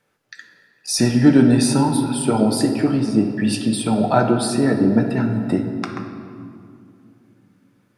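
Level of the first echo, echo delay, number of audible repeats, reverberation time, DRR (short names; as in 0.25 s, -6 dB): none, none, none, 2.4 s, 2.5 dB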